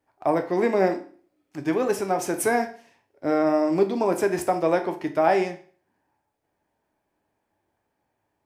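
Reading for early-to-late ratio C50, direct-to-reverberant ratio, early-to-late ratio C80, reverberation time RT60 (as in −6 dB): 13.0 dB, 6.0 dB, 17.0 dB, 0.45 s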